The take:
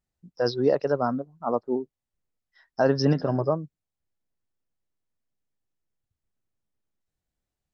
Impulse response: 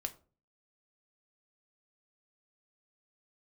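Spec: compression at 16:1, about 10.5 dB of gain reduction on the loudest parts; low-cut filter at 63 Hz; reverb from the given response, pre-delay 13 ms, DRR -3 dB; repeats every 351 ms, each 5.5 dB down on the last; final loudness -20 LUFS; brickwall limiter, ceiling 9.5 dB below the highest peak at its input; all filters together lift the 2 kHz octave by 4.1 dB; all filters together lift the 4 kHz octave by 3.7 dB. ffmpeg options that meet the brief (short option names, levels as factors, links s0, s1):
-filter_complex "[0:a]highpass=63,equalizer=f=2000:t=o:g=5,equalizer=f=4000:t=o:g=4.5,acompressor=threshold=0.0501:ratio=16,alimiter=limit=0.0708:level=0:latency=1,aecho=1:1:351|702|1053|1404|1755|2106|2457:0.531|0.281|0.149|0.079|0.0419|0.0222|0.0118,asplit=2[s0][s1];[1:a]atrim=start_sample=2205,adelay=13[s2];[s1][s2]afir=irnorm=-1:irlink=0,volume=1.5[s3];[s0][s3]amix=inputs=2:normalize=0,volume=3.35"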